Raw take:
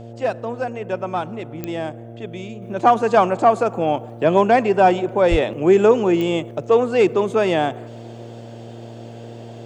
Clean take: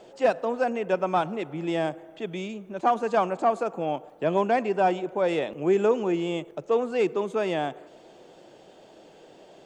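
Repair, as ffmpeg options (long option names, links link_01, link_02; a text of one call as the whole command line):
ffmpeg -i in.wav -filter_complex "[0:a]adeclick=threshold=4,bandreject=frequency=116.1:width_type=h:width=4,bandreject=frequency=232.2:width_type=h:width=4,bandreject=frequency=348.3:width_type=h:width=4,bandreject=frequency=464.4:width_type=h:width=4,bandreject=frequency=580.5:width_type=h:width=4,bandreject=frequency=696.6:width_type=h:width=4,asplit=3[link_01][link_02][link_03];[link_01]afade=type=out:start_time=5.3:duration=0.02[link_04];[link_02]highpass=frequency=140:width=0.5412,highpass=frequency=140:width=1.3066,afade=type=in:start_time=5.3:duration=0.02,afade=type=out:start_time=5.42:duration=0.02[link_05];[link_03]afade=type=in:start_time=5.42:duration=0.02[link_06];[link_04][link_05][link_06]amix=inputs=3:normalize=0,asetnsamples=nb_out_samples=441:pad=0,asendcmd='2.62 volume volume -8.5dB',volume=0dB" out.wav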